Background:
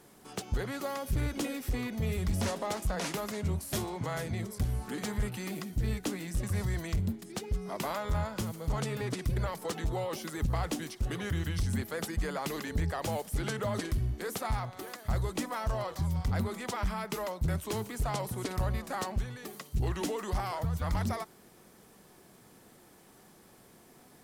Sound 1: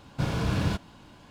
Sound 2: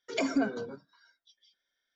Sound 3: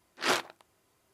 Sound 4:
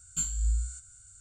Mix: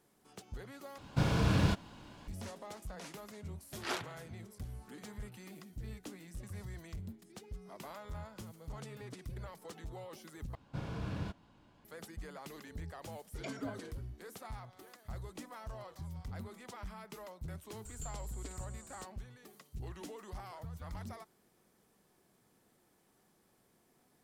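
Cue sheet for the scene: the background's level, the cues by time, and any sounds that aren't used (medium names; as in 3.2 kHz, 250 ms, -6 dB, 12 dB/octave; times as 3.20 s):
background -13.5 dB
0.98 s: replace with 1 -2 dB
3.61 s: add 3 -10.5 dB + spring tank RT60 1.1 s, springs 35 ms, chirp 75 ms, DRR 14 dB
10.55 s: replace with 1 -12.5 dB + treble shelf 3.2 kHz -7 dB
13.26 s: add 2 -14.5 dB
17.85 s: add 4 -15 dB + three bands compressed up and down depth 100%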